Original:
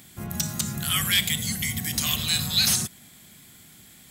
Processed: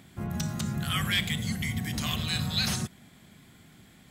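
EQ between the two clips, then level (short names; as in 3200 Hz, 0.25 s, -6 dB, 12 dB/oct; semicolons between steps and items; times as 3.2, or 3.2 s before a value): LPF 1600 Hz 6 dB/oct; +1.0 dB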